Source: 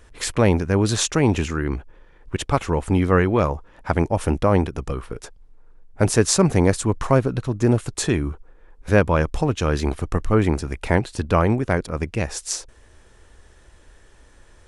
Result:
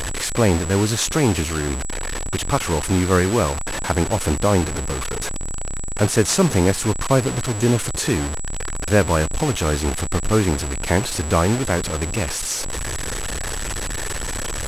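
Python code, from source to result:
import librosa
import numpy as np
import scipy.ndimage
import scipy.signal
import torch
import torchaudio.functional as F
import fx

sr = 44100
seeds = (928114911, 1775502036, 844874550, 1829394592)

y = fx.delta_mod(x, sr, bps=64000, step_db=-20.0)
y = y + 10.0 ** (-32.0 / 20.0) * np.sin(2.0 * np.pi * 7800.0 * np.arange(len(y)) / sr)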